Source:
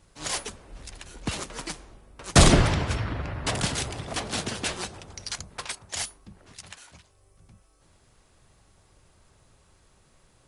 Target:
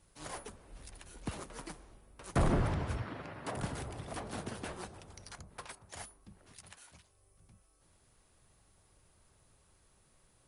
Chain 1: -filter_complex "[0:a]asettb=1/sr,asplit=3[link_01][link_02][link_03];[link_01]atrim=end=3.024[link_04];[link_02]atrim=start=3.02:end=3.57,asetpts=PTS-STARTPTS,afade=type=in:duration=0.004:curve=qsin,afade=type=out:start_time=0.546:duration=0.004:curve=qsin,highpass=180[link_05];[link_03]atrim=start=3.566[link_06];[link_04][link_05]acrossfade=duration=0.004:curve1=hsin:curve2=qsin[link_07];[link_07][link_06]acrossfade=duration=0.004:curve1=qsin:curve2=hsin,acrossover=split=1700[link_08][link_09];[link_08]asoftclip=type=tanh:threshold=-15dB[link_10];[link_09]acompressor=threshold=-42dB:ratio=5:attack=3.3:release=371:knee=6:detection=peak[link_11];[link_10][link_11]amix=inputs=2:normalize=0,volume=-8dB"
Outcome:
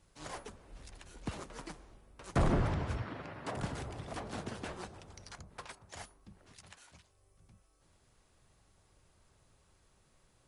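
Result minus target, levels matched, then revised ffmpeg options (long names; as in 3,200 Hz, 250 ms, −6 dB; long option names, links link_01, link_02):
8,000 Hz band −3.5 dB
-filter_complex "[0:a]asettb=1/sr,asplit=3[link_01][link_02][link_03];[link_01]atrim=end=3.024[link_04];[link_02]atrim=start=3.02:end=3.57,asetpts=PTS-STARTPTS,afade=type=in:duration=0.004:curve=qsin,afade=type=out:start_time=0.546:duration=0.004:curve=qsin,highpass=180[link_05];[link_03]atrim=start=3.566[link_06];[link_04][link_05]acrossfade=duration=0.004:curve1=hsin:curve2=qsin[link_07];[link_07][link_06]acrossfade=duration=0.004:curve1=qsin:curve2=hsin,acrossover=split=1700[link_08][link_09];[link_08]asoftclip=type=tanh:threshold=-15dB[link_10];[link_09]acompressor=threshold=-42dB:ratio=5:attack=3.3:release=371:knee=6:detection=peak,equalizer=frequency=9800:width=4:gain=10[link_11];[link_10][link_11]amix=inputs=2:normalize=0,volume=-8dB"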